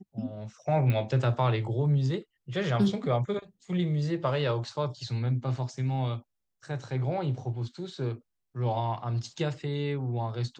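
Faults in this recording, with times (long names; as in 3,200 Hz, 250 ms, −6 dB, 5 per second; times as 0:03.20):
0:00.90: click −18 dBFS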